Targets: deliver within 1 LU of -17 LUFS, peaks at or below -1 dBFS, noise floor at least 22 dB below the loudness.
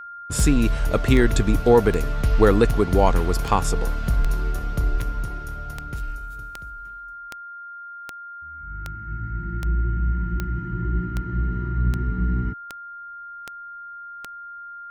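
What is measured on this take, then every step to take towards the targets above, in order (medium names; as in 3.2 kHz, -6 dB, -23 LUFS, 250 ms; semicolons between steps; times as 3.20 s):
clicks found 19; steady tone 1.4 kHz; tone level -35 dBFS; loudness -23.0 LUFS; peak level -3.5 dBFS; loudness target -17.0 LUFS
-> de-click; band-stop 1.4 kHz, Q 30; trim +6 dB; peak limiter -1 dBFS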